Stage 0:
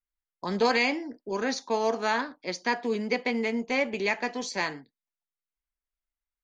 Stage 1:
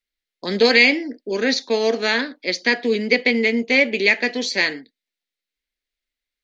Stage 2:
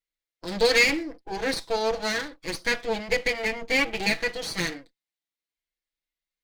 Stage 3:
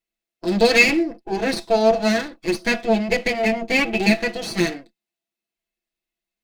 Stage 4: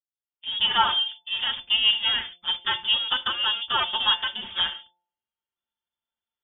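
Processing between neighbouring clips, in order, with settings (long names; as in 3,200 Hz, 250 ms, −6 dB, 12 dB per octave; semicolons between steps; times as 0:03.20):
octave-band graphic EQ 125/250/500/1,000/2,000/4,000 Hz −6/+8/+8/−9/+11/+12 dB; level +1 dB
lower of the sound and its delayed copy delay 6.1 ms; harmonic and percussive parts rebalanced percussive −4 dB; level −4 dB
hollow resonant body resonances 220/350/670/2,600 Hz, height 14 dB, ringing for 70 ms; level +2 dB
fade in at the beginning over 0.90 s; voice inversion scrambler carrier 3,500 Hz; hum removal 175.7 Hz, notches 5; level −5 dB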